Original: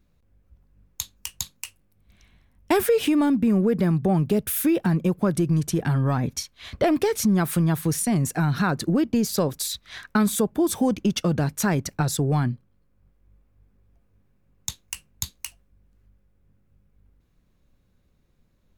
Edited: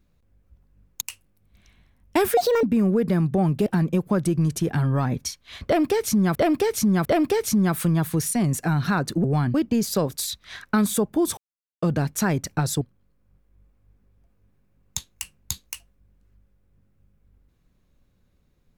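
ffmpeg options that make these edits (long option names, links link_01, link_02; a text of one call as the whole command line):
ffmpeg -i in.wav -filter_complex "[0:a]asplit=12[link_01][link_02][link_03][link_04][link_05][link_06][link_07][link_08][link_09][link_10][link_11][link_12];[link_01]atrim=end=1.012[link_13];[link_02]atrim=start=1.558:end=2.924[link_14];[link_03]atrim=start=2.92:end=3.34,asetpts=PTS-STARTPTS,asetrate=70560,aresample=44100,atrim=end_sample=11576,asetpts=PTS-STARTPTS[link_15];[link_04]atrim=start=3.336:end=4.372[link_16];[link_05]atrim=start=4.778:end=7.472[link_17];[link_06]atrim=start=6.768:end=7.472[link_18];[link_07]atrim=start=6.768:end=8.962[link_19];[link_08]atrim=start=12.228:end=12.532[link_20];[link_09]atrim=start=8.958:end=10.79,asetpts=PTS-STARTPTS,afade=type=out:start_time=1.828:duration=0.004:curve=hsin[link_21];[link_10]atrim=start=10.79:end=11.24,asetpts=PTS-STARTPTS,volume=0[link_22];[link_11]atrim=start=11.24:end=12.232,asetpts=PTS-STARTPTS,afade=type=in:duration=0.004:curve=hsin[link_23];[link_12]atrim=start=12.528[link_24];[link_13][link_14]acrossfade=duration=0.004:curve1=hsin:curve2=hsin[link_25];[link_25][link_15]acrossfade=duration=0.004:curve1=hsin:curve2=hsin[link_26];[link_26][link_16]acrossfade=duration=0.004:curve1=hsin:curve2=hsin[link_27];[link_27][link_17]acrossfade=duration=0.004:curve1=hsin:curve2=hsin[link_28];[link_28][link_18]acrossfade=duration=0.004:curve1=hsin:curve2=hsin[link_29];[link_29][link_19]acrossfade=duration=0.004:curve1=hsin:curve2=hsin[link_30];[link_30][link_20]acrossfade=duration=0.004:curve1=hsin:curve2=hsin[link_31];[link_21][link_22][link_23]concat=n=3:v=0:a=1[link_32];[link_31][link_32]acrossfade=duration=0.004:curve1=hsin:curve2=hsin[link_33];[link_33][link_24]acrossfade=duration=0.004:curve1=hsin:curve2=hsin" out.wav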